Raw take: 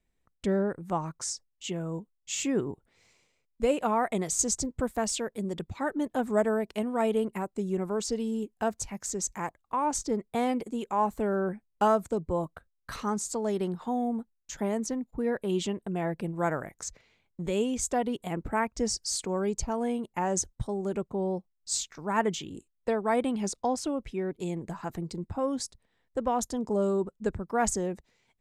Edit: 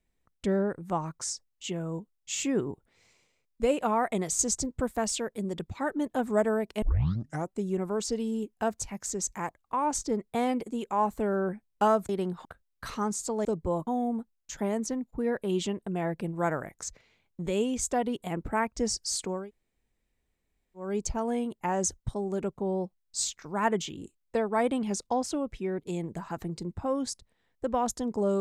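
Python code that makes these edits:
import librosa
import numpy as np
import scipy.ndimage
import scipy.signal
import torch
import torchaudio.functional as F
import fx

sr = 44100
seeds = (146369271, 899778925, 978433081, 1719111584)

y = fx.edit(x, sr, fx.tape_start(start_s=6.82, length_s=0.69),
    fx.swap(start_s=12.09, length_s=0.42, other_s=13.51, other_length_s=0.36),
    fx.insert_room_tone(at_s=19.39, length_s=1.47, crossfade_s=0.24), tone=tone)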